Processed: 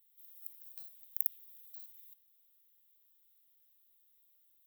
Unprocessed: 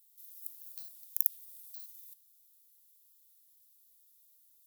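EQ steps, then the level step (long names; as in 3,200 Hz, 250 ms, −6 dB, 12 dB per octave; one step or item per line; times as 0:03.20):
high-shelf EQ 2,300 Hz −8 dB
flat-topped bell 7,300 Hz −12.5 dB
+5.5 dB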